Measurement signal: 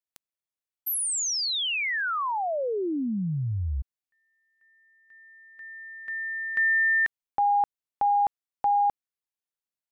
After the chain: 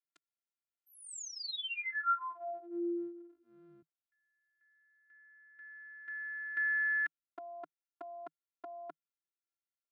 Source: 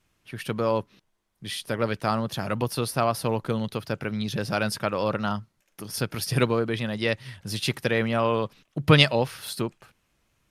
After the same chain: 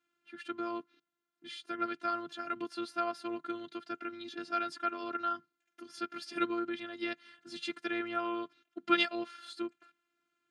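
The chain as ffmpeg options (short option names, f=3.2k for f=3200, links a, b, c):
-af "afftfilt=real='hypot(re,im)*cos(PI*b)':imag='0':win_size=512:overlap=0.75,highpass=f=150:w=0.5412,highpass=f=150:w=1.3066,equalizer=f=160:t=q:w=4:g=8,equalizer=f=300:t=q:w=4:g=4,equalizer=f=560:t=q:w=4:g=-4,equalizer=f=880:t=q:w=4:g=-10,equalizer=f=1.4k:t=q:w=4:g=10,equalizer=f=5.6k:t=q:w=4:g=-8,lowpass=f=7.1k:w=0.5412,lowpass=f=7.1k:w=1.3066,volume=-7.5dB"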